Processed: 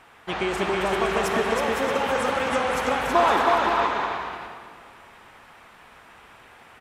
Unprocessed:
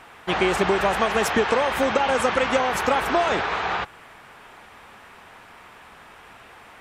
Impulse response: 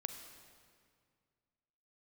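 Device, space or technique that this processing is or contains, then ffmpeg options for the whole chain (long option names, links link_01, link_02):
stairwell: -filter_complex "[0:a]asettb=1/sr,asplit=3[link_01][link_02][link_03];[link_01]atrim=end=3.154[link_04];[link_02]atrim=start=3.15:end=3.55,asetpts=PTS-STARTPTS,afade=type=in:duration=0.004:curve=qsin,afade=type=out:start_time=0.396:duration=0.004:curve=qsin,equalizer=frequency=125:width_type=o:width=1:gain=-11,equalizer=frequency=250:width_type=o:width=1:gain=9,equalizer=frequency=1000:width_type=o:width=1:gain=12,equalizer=frequency=4000:width_type=o:width=1:gain=4[link_05];[link_03]atrim=start=3.546[link_06];[link_04][link_05]acrossfade=duration=0.004:curve1=hsin:curve2=qsin[link_07];[link_07][link_06]acrossfade=duration=0.004:curve1=qsin:curve2=hsin,aecho=1:1:320|512|627.2|696.3|737.8:0.631|0.398|0.251|0.158|0.1[link_08];[1:a]atrim=start_sample=2205[link_09];[link_08][link_09]afir=irnorm=-1:irlink=0,volume=-3.5dB"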